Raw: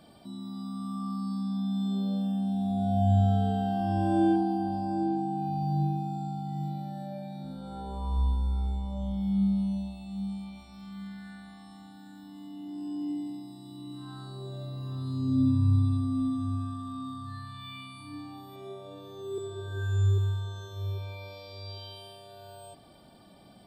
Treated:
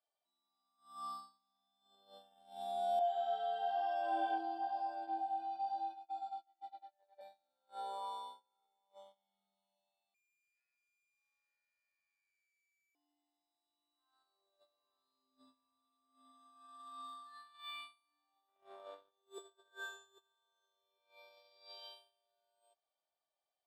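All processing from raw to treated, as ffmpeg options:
-filter_complex "[0:a]asettb=1/sr,asplit=3[s0][s1][s2];[s0]atrim=end=2.994[s3];[s1]atrim=start=2.99:end=7.21,asetpts=PTS-STARTPTS,afade=t=in:d=0.004:c=qsin,afade=t=out:st=4.216:d=0.004:c=qsin,acrossover=split=270 4800:gain=0.112 1 0.112[s4][s5][s6];[s4][s5][s6]amix=inputs=3:normalize=0,flanger=delay=17:depth=4.3:speed=1[s7];[s2]atrim=start=7.206[s8];[s3][s7]acrossfade=d=0.004:c1=hsin:c2=qsin[s9];[s9][s8]acrossfade=d=0.004:c1=qsin:c2=hsin,asettb=1/sr,asplit=3[s10][s11][s12];[s10]atrim=end=10.144[s13];[s11]atrim=start=10.14:end=12.95,asetpts=PTS-STARTPTS,afade=t=in:d=0.004:c=qsin,afade=t=out:st=2.806:d=0.004:c=qsin,lowpass=f=2200:t=q:w=0.5098,lowpass=f=2200:t=q:w=0.6013,lowpass=f=2200:t=q:w=0.9,lowpass=f=2200:t=q:w=2.563,afreqshift=-2600,aeval=exprs='(tanh(355*val(0)+0.65)-tanh(0.65))/355':c=same[s14];[s12]atrim=start=12.946[s15];[s13][s14]acrossfade=d=0.004:c1=hsin:c2=qsin[s16];[s16][s15]acrossfade=d=0.004:c1=qsin:c2=hsin,asettb=1/sr,asplit=3[s17][s18][s19];[s17]atrim=end=18.484[s20];[s18]atrim=start=18.48:end=19.11,asetpts=PTS-STARTPTS,afade=t=in:d=0.004:c=qsin,afade=t=out:st=0.626:d=0.004:c=qsin,highshelf=f=3400:g=-10.5,acontrast=41,aeval=exprs='(tanh(39.8*val(0)+0.5)-tanh(0.5))/39.8':c=same[s21];[s19]atrim=start=19.106[s22];[s20][s21]acrossfade=d=0.004:c1=hsin:c2=qsin[s23];[s23][s22]acrossfade=d=0.004:c1=qsin:c2=hsin,highpass=f=550:w=0.5412,highpass=f=550:w=1.3066,agate=range=0.02:threshold=0.00631:ratio=16:detection=peak"

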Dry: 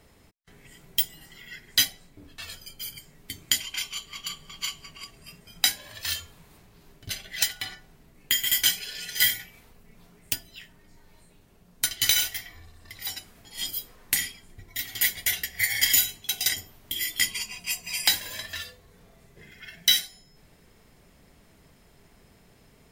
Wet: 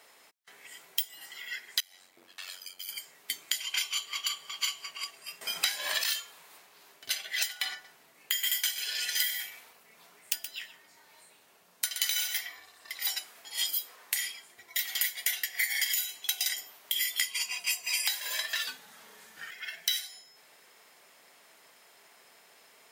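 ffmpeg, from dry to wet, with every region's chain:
-filter_complex "[0:a]asettb=1/sr,asplit=3[s0][s1][s2];[s0]atrim=end=1.804[s3];[s1]atrim=start=1.8:end=2.89,asetpts=PTS-STARTPTS,afade=t=in:d=0.004:c=qsin,afade=t=out:st=1.086:d=0.004:c=qsin,acompressor=threshold=0.0112:ratio=10:attack=3.2:release=140:knee=1:detection=peak,aeval=exprs='val(0)*sin(2*PI*46*n/s)':c=same[s4];[s2]atrim=start=2.886[s5];[s3][s4]acrossfade=d=0.004:c1=hsin:c2=qsin[s6];[s6][s5]acrossfade=d=0.004:c1=qsin:c2=hsin,asettb=1/sr,asplit=3[s7][s8][s9];[s7]atrim=end=5.414[s10];[s8]atrim=start=5.41:end=6.04,asetpts=PTS-STARTPTS,afade=t=in:d=0.004:c=qsin,afade=t=out:st=0.626:d=0.004:c=qsin,acrossover=split=5500[s11][s12];[s12]acompressor=threshold=0.02:ratio=4:attack=1:release=60[s13];[s11][s13]amix=inputs=2:normalize=0,aeval=exprs='0.501*sin(PI/2*2.82*val(0)/0.501)':c=same[s14];[s9]atrim=start=6.036[s15];[s10][s14]acrossfade=d=0.004:c1=hsin:c2=qsin[s16];[s16][s15]acrossfade=d=0.004:c1=qsin:c2=hsin,asettb=1/sr,asplit=3[s17][s18][s19];[s17]atrim=end=7.724[s20];[s18]atrim=start=7.72:end=12.46,asetpts=PTS-STARTPTS,afade=t=in:d=0.004:c=qsin,afade=t=out:st=4.736:d=0.004:c=qsin,lowshelf=f=120:g=9.5,aecho=1:1:123:0.188,atrim=end_sample=209034[s21];[s19]atrim=start=12.456[s22];[s20][s21]acrossfade=d=0.004:c1=hsin:c2=qsin[s23];[s23][s22]acrossfade=d=0.004:c1=qsin:c2=hsin,asettb=1/sr,asplit=3[s24][s25][s26];[s24]atrim=end=18.674[s27];[s25]atrim=start=18.67:end=19.51,asetpts=PTS-STARTPTS,afade=t=in:d=0.004:c=qsin,afade=t=out:st=0.836:d=0.004:c=qsin,acontrast=48,afreqshift=-240[s28];[s26]atrim=start=19.506[s29];[s27][s28]acrossfade=d=0.004:c1=hsin:c2=qsin[s30];[s30][s29]acrossfade=d=0.004:c1=qsin:c2=hsin,highpass=730,alimiter=limit=0.282:level=0:latency=1:release=251,acompressor=threshold=0.0282:ratio=6,volume=1.68"

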